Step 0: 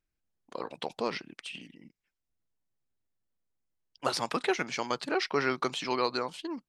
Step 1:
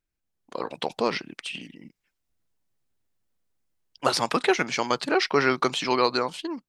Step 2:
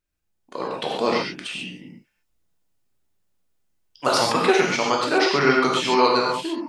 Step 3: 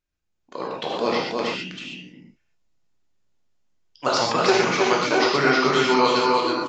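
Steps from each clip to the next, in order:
AGC gain up to 7 dB
non-linear reverb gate 0.16 s flat, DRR -2.5 dB
on a send: echo 0.32 s -3 dB; on the sum: downsampling 16000 Hz; gain -1.5 dB

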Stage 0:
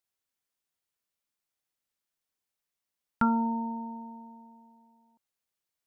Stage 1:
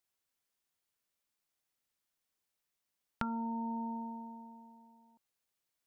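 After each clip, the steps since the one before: compressor 16:1, threshold -35 dBFS, peak gain reduction 14.5 dB; gain +1 dB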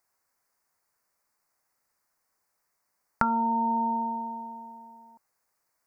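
EQ curve 310 Hz 0 dB, 1000 Hz +9 dB, 2100 Hz +3 dB, 3300 Hz -17 dB, 4700 Hz +1 dB; gain +7 dB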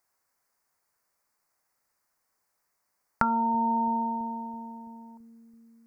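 analogue delay 0.331 s, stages 1024, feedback 68%, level -18.5 dB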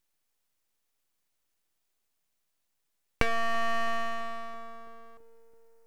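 full-wave rectifier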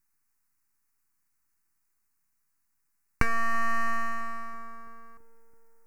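fixed phaser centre 1400 Hz, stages 4; gain +4 dB

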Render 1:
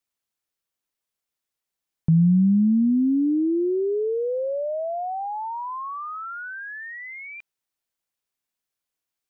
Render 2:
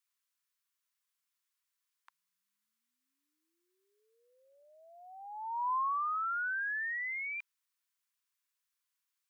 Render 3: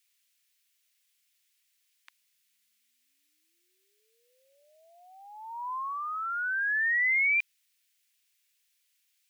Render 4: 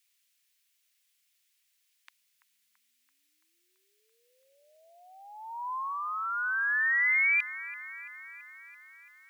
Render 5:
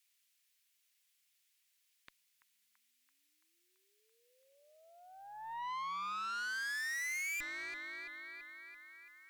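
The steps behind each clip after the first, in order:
Chebyshev high-pass 1000 Hz, order 5
resonant high shelf 1600 Hz +12 dB, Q 1.5
band-limited delay 0.335 s, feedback 66%, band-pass 930 Hz, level -11 dB
tube stage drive 38 dB, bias 0.6

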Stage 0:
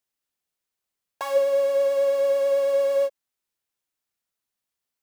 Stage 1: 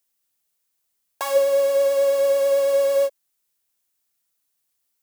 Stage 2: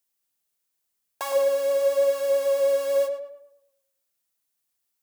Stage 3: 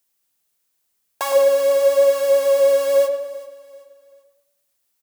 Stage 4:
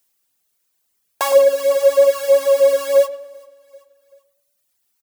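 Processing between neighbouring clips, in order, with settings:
high shelf 5700 Hz +11 dB; gain +2.5 dB
tape echo 0.11 s, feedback 43%, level -6 dB, low-pass 2500 Hz; gain -4 dB
feedback echo 0.387 s, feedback 36%, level -18 dB; gain +7 dB
reverb removal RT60 1.2 s; gain +4.5 dB

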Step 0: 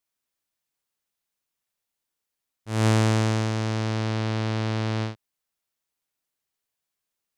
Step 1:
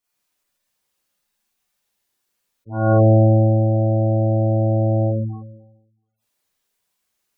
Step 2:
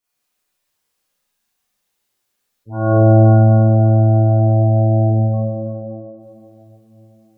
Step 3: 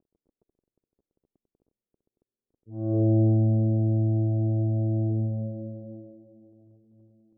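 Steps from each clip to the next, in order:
Schroeder reverb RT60 1 s, combs from 31 ms, DRR -9.5 dB; spectral gate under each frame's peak -15 dB strong
tape echo 0.334 s, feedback 72%, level -14 dB, low-pass 1000 Hz; plate-style reverb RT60 3.7 s, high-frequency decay 0.9×, DRR 1.5 dB
crackle 18/s -26 dBFS; ladder low-pass 490 Hz, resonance 35%; gain -4.5 dB

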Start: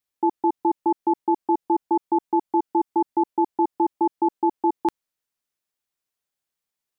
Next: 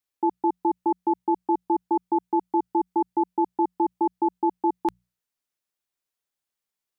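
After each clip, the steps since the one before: notches 60/120/180 Hz; gain -2 dB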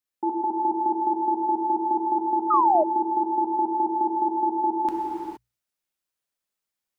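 non-linear reverb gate 0.49 s flat, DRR -2.5 dB; painted sound fall, 2.5–2.84, 590–1300 Hz -16 dBFS; gain -3.5 dB

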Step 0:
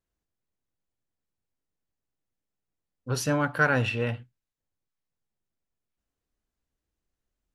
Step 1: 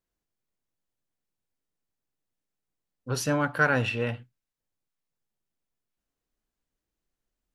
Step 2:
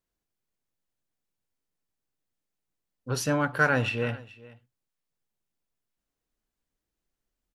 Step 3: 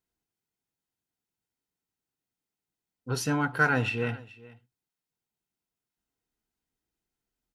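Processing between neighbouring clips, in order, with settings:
bell 70 Hz -7 dB 0.99 oct
echo 0.427 s -20.5 dB
notch comb 570 Hz

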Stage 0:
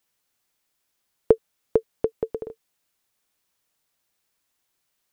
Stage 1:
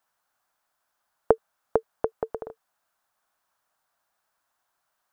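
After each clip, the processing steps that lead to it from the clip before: band shelf 1000 Hz +13 dB; gain -5 dB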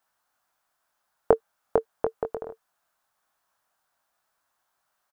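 doubler 22 ms -6.5 dB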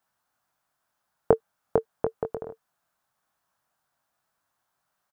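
bell 140 Hz +9 dB 2 oct; gain -2.5 dB

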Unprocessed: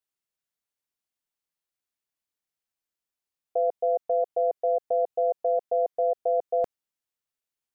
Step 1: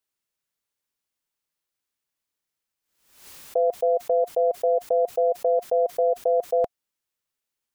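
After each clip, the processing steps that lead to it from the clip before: notch 710 Hz, Q 12; backwards sustainer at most 86 dB/s; gain +4.5 dB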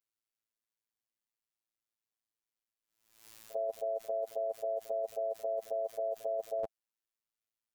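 robotiser 111 Hz; pre-echo 48 ms -18 dB; gain -8.5 dB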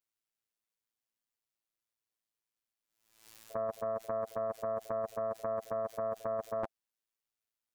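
Doppler distortion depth 0.79 ms

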